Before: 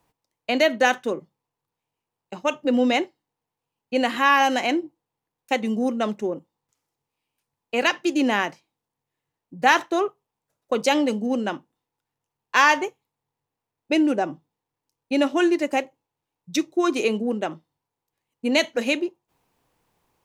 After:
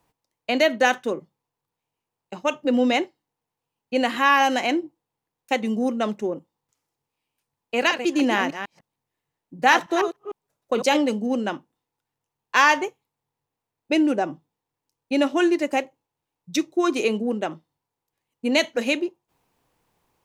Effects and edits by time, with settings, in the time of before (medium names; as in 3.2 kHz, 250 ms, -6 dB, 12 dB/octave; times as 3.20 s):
7.75–10.97 s: chunks repeated in reverse 151 ms, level -8.5 dB